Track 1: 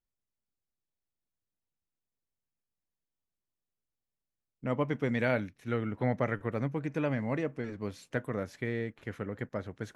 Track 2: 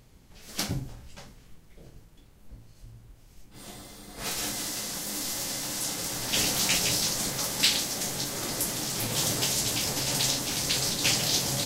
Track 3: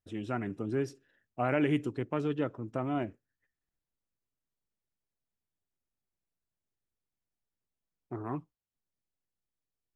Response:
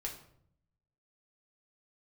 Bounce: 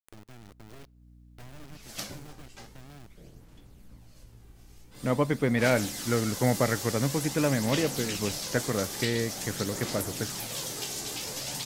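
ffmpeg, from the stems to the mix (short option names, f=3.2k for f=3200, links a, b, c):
-filter_complex "[0:a]acontrast=51,aeval=exprs='val(0)+0.00141*(sin(2*PI*60*n/s)+sin(2*PI*2*60*n/s)/2+sin(2*PI*3*60*n/s)/3+sin(2*PI*4*60*n/s)/4+sin(2*PI*5*60*n/s)/5)':c=same,adelay=400,volume=-1dB[a];[1:a]acrossover=split=140|470|1800[b][c][d][e];[b]acompressor=threshold=-53dB:ratio=4[f];[c]acompressor=threshold=-42dB:ratio=4[g];[d]acompressor=threshold=-44dB:ratio=4[h];[e]acompressor=threshold=-33dB:ratio=4[i];[f][g][h][i]amix=inputs=4:normalize=0,aphaser=in_gain=1:out_gain=1:delay=2.6:decay=0.37:speed=0.47:type=sinusoidal,adelay=1400,volume=-2dB[j];[2:a]aeval=exprs='max(val(0),0)':c=same,acrossover=split=240|2400[k][l][m];[k]acompressor=threshold=-40dB:ratio=4[n];[l]acompressor=threshold=-50dB:ratio=4[o];[m]acompressor=threshold=-57dB:ratio=4[p];[n][o][p]amix=inputs=3:normalize=0,acrusher=bits=4:dc=4:mix=0:aa=0.000001,volume=-7dB,asplit=2[q][r];[r]volume=-23.5dB[s];[3:a]atrim=start_sample=2205[t];[s][t]afir=irnorm=-1:irlink=0[u];[a][j][q][u]amix=inputs=4:normalize=0,acompressor=mode=upward:threshold=-46dB:ratio=2.5"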